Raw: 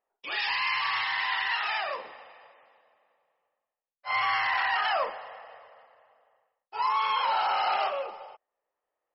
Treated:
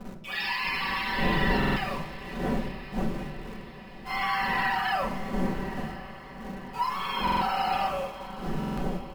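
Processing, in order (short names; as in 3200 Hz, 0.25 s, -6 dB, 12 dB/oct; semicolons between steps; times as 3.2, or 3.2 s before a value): wind noise 410 Hz -34 dBFS; comb 5.2 ms, depth 76%; in parallel at -7 dB: bit-crush 6-bit; on the sum: diffused feedback echo 1.038 s, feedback 52%, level -14.5 dB; reverb RT60 0.80 s, pre-delay 4 ms, DRR 4 dB; stuck buffer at 1.58/7.23/8.59, samples 2048, times 3; gain -8 dB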